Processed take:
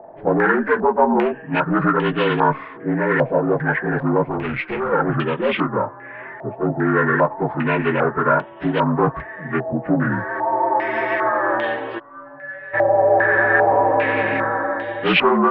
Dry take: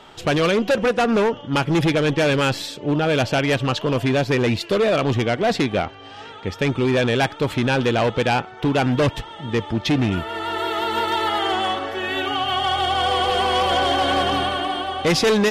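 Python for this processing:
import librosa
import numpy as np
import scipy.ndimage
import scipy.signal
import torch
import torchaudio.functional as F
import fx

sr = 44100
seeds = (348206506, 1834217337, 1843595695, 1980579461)

y = fx.partial_stretch(x, sr, pct=76)
y = fx.tube_stage(y, sr, drive_db=21.0, bias=0.65, at=(4.28, 4.92))
y = fx.stiff_resonator(y, sr, f0_hz=140.0, decay_s=0.68, stiffness=0.002, at=(11.98, 12.73), fade=0.02)
y = fx.filter_held_lowpass(y, sr, hz=2.5, low_hz=710.0, high_hz=3100.0)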